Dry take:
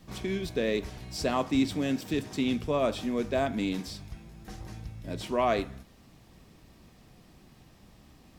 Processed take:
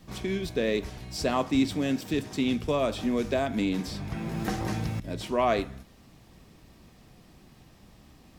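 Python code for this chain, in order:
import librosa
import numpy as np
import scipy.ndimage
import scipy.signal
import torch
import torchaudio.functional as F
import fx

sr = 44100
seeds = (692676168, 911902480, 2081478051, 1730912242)

y = fx.band_squash(x, sr, depth_pct=100, at=(2.68, 5.0))
y = y * librosa.db_to_amplitude(1.5)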